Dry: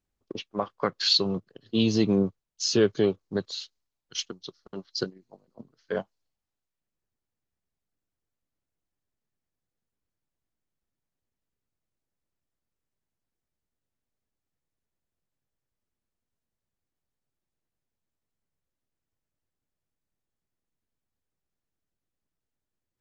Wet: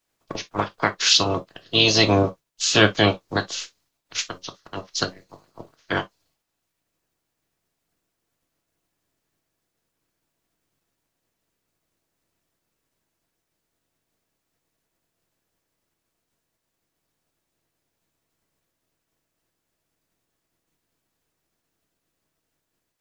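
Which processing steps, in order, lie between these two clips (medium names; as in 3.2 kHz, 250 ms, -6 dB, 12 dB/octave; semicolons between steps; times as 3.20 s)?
spectral peaks clipped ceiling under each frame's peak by 23 dB; gated-style reverb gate 80 ms falling, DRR 7 dB; trim +5 dB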